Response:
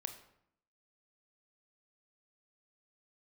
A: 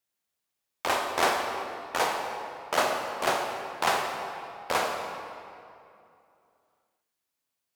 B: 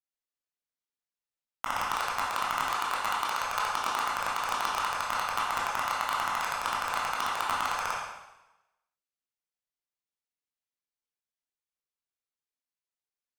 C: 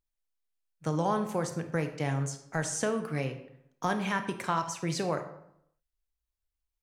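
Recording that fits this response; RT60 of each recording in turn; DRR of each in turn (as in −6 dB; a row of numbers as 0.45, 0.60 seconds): C; 2.6, 1.0, 0.70 seconds; 2.0, −6.5, 7.0 decibels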